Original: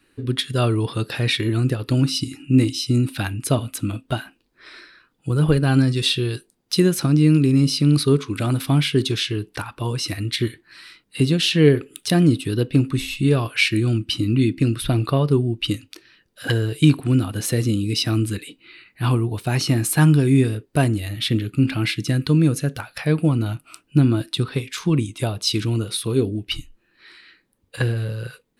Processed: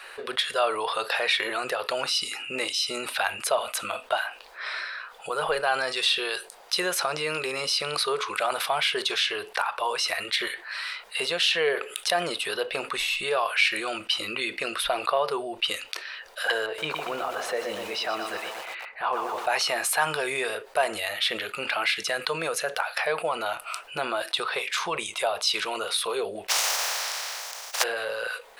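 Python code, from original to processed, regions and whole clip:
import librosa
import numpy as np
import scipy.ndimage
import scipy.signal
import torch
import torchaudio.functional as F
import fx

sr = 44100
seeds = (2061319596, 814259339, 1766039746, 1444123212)

y = fx.chain(x, sr, fx.lowpass(hz=1000.0, slope=6),
    fx.low_shelf(hz=110.0, db=-7.0),
    fx.echo_crushed(ms=121, feedback_pct=55, bits=7, wet_db=-8.5), at=(16.66, 19.47))
y = fx.spec_flatten(y, sr, power=0.12, at=(26.48, 27.82), fade=0.02)
y = fx.peak_eq(y, sr, hz=5700.0, db=9.0, octaves=0.7, at=(26.48, 27.82), fade=0.02)
y = fx.sustainer(y, sr, db_per_s=29.0, at=(26.48, 27.82), fade=0.02)
y = scipy.signal.sosfilt(scipy.signal.cheby2(4, 40, 310.0, 'highpass', fs=sr, output='sos'), y)
y = fx.tilt_eq(y, sr, slope=-3.0)
y = fx.env_flatten(y, sr, amount_pct=50)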